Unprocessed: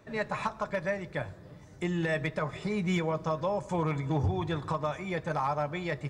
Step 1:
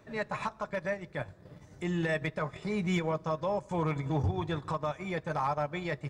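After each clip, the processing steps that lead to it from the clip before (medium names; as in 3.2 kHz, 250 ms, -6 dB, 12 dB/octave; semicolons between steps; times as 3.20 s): transient shaper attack -4 dB, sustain -8 dB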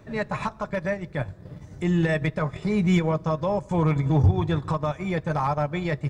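bass shelf 240 Hz +9 dB; trim +4.5 dB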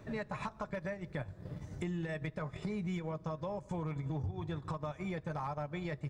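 compression 6:1, threshold -33 dBFS, peak gain reduction 17.5 dB; trim -3 dB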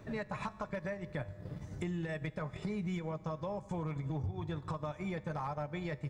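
feedback comb 100 Hz, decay 1.8 s, mix 50%; trim +6 dB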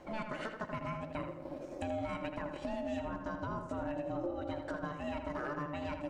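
ring modulator 440 Hz; filtered feedback delay 81 ms, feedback 45%, low-pass 3.2 kHz, level -6 dB; trim +1.5 dB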